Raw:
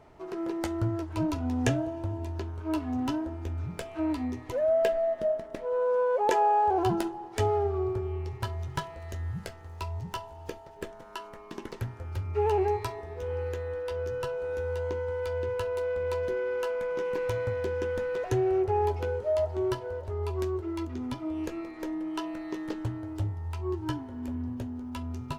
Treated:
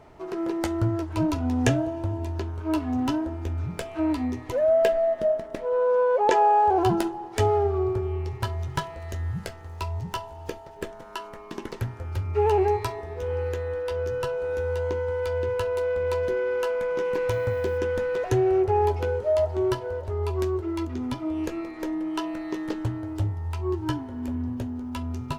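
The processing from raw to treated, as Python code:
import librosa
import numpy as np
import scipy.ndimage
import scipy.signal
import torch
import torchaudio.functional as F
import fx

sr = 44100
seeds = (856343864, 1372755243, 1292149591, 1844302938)

y = fx.lowpass(x, sr, hz=6900.0, slope=12, at=(5.69, 6.41))
y = fx.dmg_noise_colour(y, sr, seeds[0], colour='blue', level_db=-68.0, at=(17.3, 17.77), fade=0.02)
y = y * 10.0 ** (4.5 / 20.0)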